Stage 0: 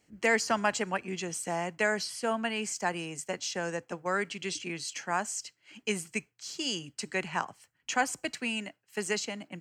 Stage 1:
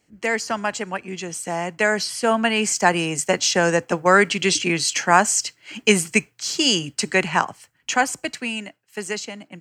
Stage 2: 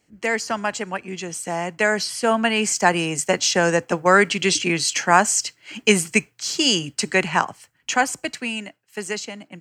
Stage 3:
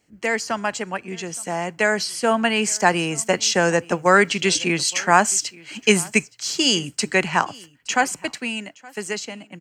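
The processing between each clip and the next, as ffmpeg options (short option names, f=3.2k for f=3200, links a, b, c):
-af "dynaudnorm=f=220:g=21:m=15dB,volume=3dB"
-af anull
-af "aecho=1:1:870:0.0631"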